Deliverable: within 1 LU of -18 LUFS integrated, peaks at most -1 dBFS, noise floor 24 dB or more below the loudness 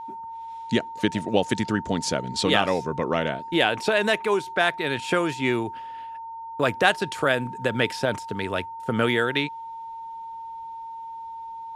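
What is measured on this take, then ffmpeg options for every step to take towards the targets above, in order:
steady tone 910 Hz; tone level -34 dBFS; loudness -24.5 LUFS; peak -2.5 dBFS; loudness target -18.0 LUFS
-> -af "bandreject=f=910:w=30"
-af "volume=6.5dB,alimiter=limit=-1dB:level=0:latency=1"

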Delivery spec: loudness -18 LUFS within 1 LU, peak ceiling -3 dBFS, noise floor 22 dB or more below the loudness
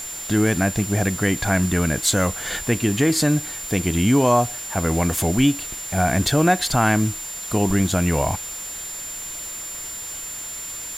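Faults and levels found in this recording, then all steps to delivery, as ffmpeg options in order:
steady tone 7200 Hz; tone level -31 dBFS; noise floor -33 dBFS; noise floor target -44 dBFS; loudness -21.5 LUFS; peak -5.0 dBFS; loudness target -18.0 LUFS
-> -af "bandreject=f=7.2k:w=30"
-af "afftdn=nr=11:nf=-33"
-af "volume=3.5dB,alimiter=limit=-3dB:level=0:latency=1"

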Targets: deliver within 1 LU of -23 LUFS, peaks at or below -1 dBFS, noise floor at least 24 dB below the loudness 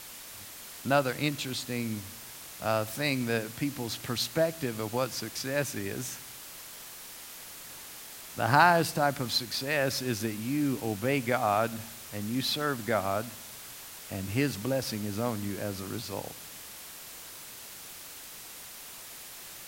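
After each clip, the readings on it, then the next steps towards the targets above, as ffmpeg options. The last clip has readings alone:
noise floor -46 dBFS; noise floor target -54 dBFS; loudness -30.0 LUFS; peak -6.5 dBFS; loudness target -23.0 LUFS
-> -af "afftdn=nr=8:nf=-46"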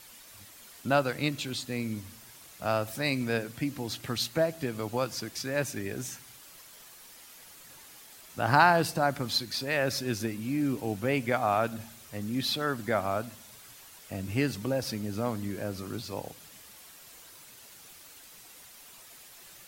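noise floor -52 dBFS; noise floor target -54 dBFS
-> -af "afftdn=nr=6:nf=-52"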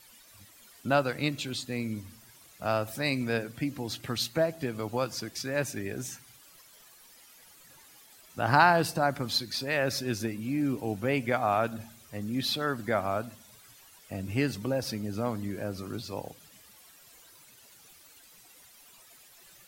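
noise floor -56 dBFS; loudness -30.0 LUFS; peak -7.0 dBFS; loudness target -23.0 LUFS
-> -af "volume=7dB,alimiter=limit=-1dB:level=0:latency=1"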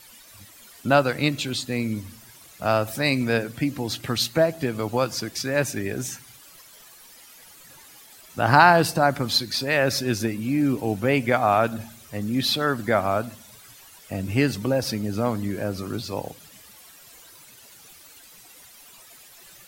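loudness -23.5 LUFS; peak -1.0 dBFS; noise floor -49 dBFS

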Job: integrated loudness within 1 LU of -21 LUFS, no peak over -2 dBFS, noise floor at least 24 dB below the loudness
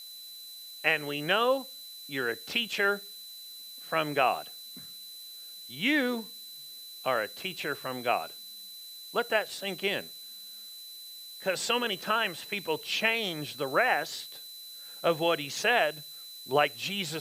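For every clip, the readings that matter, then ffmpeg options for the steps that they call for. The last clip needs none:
steady tone 4000 Hz; tone level -44 dBFS; noise floor -46 dBFS; noise floor target -54 dBFS; loudness -29.5 LUFS; peak -9.0 dBFS; loudness target -21.0 LUFS
-> -af "bandreject=f=4k:w=30"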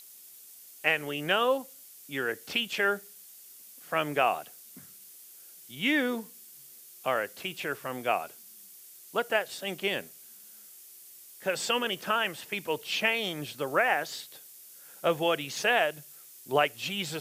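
steady tone none; noise floor -51 dBFS; noise floor target -54 dBFS
-> -af "afftdn=nr=6:nf=-51"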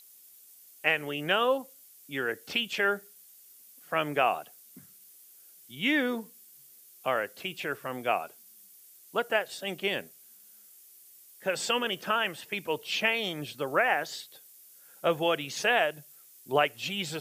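noise floor -55 dBFS; loudness -29.5 LUFS; peak -9.5 dBFS; loudness target -21.0 LUFS
-> -af "volume=8.5dB,alimiter=limit=-2dB:level=0:latency=1"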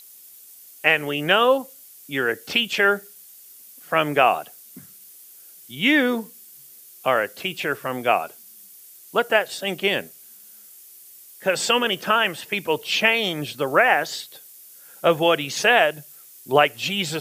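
loudness -21.0 LUFS; peak -2.0 dBFS; noise floor -47 dBFS

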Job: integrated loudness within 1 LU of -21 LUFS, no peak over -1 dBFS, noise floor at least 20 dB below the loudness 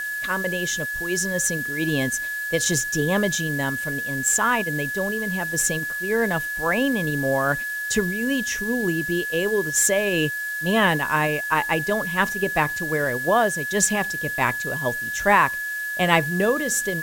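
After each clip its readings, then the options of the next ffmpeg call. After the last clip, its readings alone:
steady tone 1700 Hz; tone level -26 dBFS; noise floor -29 dBFS; noise floor target -42 dBFS; loudness -22.0 LUFS; peak -2.0 dBFS; loudness target -21.0 LUFS
-> -af "bandreject=f=1.7k:w=30"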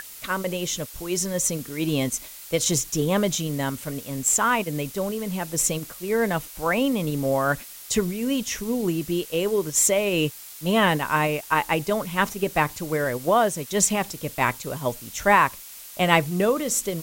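steady tone none; noise floor -42 dBFS; noise floor target -44 dBFS
-> -af "afftdn=nr=6:nf=-42"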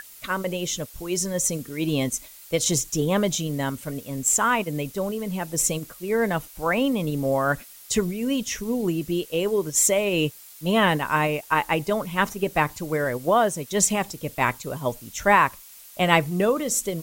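noise floor -46 dBFS; loudness -24.0 LUFS; peak -2.0 dBFS; loudness target -21.0 LUFS
-> -af "volume=3dB,alimiter=limit=-1dB:level=0:latency=1"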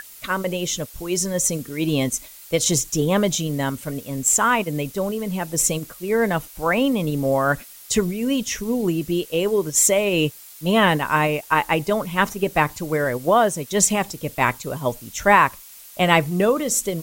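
loudness -21.0 LUFS; peak -1.0 dBFS; noise floor -43 dBFS

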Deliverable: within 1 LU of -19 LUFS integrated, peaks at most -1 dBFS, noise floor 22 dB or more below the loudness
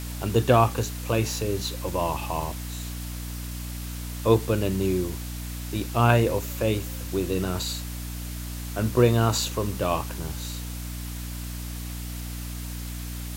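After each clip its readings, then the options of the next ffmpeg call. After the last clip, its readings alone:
hum 60 Hz; harmonics up to 300 Hz; hum level -32 dBFS; noise floor -34 dBFS; noise floor target -49 dBFS; loudness -27.0 LUFS; peak -3.0 dBFS; loudness target -19.0 LUFS
-> -af "bandreject=f=60:t=h:w=6,bandreject=f=120:t=h:w=6,bandreject=f=180:t=h:w=6,bandreject=f=240:t=h:w=6,bandreject=f=300:t=h:w=6"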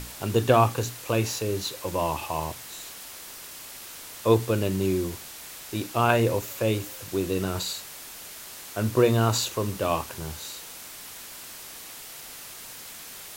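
hum none; noise floor -42 dBFS; noise floor target -49 dBFS
-> -af "afftdn=nr=7:nf=-42"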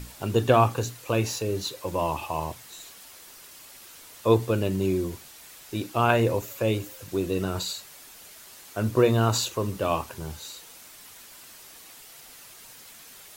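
noise floor -48 dBFS; noise floor target -49 dBFS
-> -af "afftdn=nr=6:nf=-48"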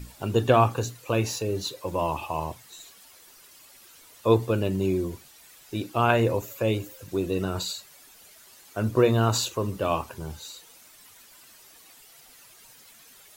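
noise floor -53 dBFS; loudness -26.5 LUFS; peak -5.5 dBFS; loudness target -19.0 LUFS
-> -af "volume=7.5dB,alimiter=limit=-1dB:level=0:latency=1"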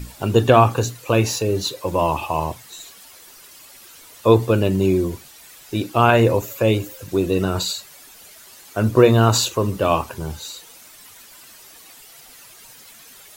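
loudness -19.0 LUFS; peak -1.0 dBFS; noise floor -45 dBFS

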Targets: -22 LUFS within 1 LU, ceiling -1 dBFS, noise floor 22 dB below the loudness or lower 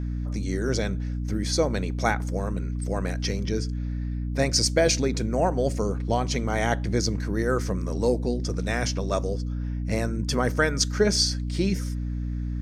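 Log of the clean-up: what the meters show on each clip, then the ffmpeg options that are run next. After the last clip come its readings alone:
hum 60 Hz; harmonics up to 300 Hz; hum level -26 dBFS; loudness -26.0 LUFS; peak -7.5 dBFS; loudness target -22.0 LUFS
-> -af "bandreject=f=60:t=h:w=4,bandreject=f=120:t=h:w=4,bandreject=f=180:t=h:w=4,bandreject=f=240:t=h:w=4,bandreject=f=300:t=h:w=4"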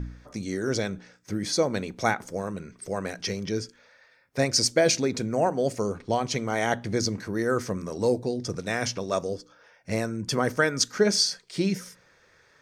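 hum none; loudness -27.0 LUFS; peak -8.5 dBFS; loudness target -22.0 LUFS
-> -af "volume=5dB"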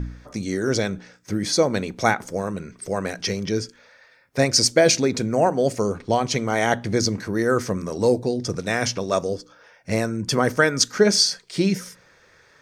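loudness -22.0 LUFS; peak -3.5 dBFS; noise floor -56 dBFS

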